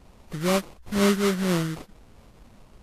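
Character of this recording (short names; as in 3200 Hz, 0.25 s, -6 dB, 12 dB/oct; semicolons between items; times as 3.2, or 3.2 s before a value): phasing stages 2, 4 Hz, lowest notch 700–1500 Hz; aliases and images of a low sample rate 1700 Hz, jitter 20%; Vorbis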